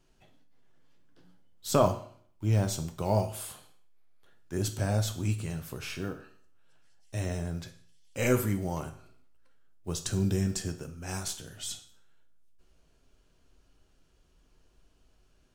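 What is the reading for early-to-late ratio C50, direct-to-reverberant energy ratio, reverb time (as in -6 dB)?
12.0 dB, 6.0 dB, 0.55 s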